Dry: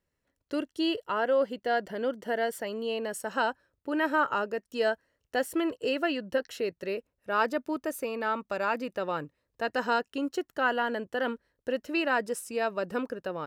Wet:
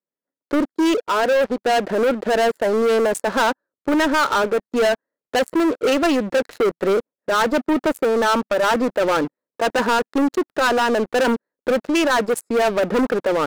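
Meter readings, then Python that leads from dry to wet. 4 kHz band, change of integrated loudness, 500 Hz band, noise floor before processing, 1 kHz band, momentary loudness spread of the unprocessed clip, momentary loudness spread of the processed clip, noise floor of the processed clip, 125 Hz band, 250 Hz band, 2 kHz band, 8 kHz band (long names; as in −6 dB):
+11.0 dB, +11.0 dB, +11.5 dB, −83 dBFS, +10.0 dB, 7 LU, 5 LU, below −85 dBFS, +12.5 dB, +12.5 dB, +8.5 dB, +12.5 dB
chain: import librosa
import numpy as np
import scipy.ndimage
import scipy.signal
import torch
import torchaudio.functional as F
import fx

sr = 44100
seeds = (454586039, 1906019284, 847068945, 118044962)

y = fx.wiener(x, sr, points=15)
y = scipy.signal.sosfilt(scipy.signal.butter(4, 200.0, 'highpass', fs=sr, output='sos'), y)
y = fx.rider(y, sr, range_db=3, speed_s=0.5)
y = fx.leveller(y, sr, passes=5)
y = F.gain(torch.from_numpy(y), 1.0).numpy()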